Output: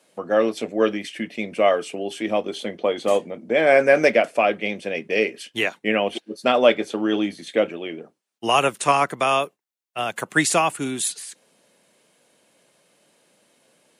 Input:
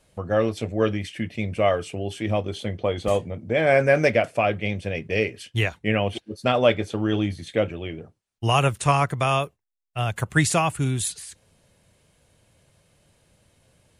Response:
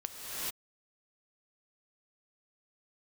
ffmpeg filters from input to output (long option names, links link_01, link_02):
-af "highpass=frequency=220:width=0.5412,highpass=frequency=220:width=1.3066,volume=3dB"